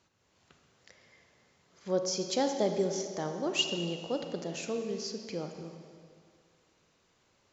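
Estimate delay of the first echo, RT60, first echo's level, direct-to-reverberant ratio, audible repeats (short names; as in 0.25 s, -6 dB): none, 2.2 s, none, 5.0 dB, none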